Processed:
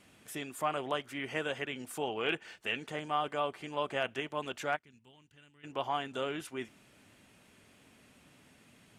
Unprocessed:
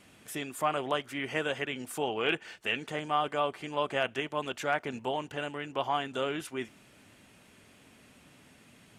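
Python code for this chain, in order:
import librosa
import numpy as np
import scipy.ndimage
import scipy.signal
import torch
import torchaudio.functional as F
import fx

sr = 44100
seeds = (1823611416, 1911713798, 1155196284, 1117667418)

y = fx.tone_stack(x, sr, knobs='6-0-2', at=(4.75, 5.63), fade=0.02)
y = F.gain(torch.from_numpy(y), -3.5).numpy()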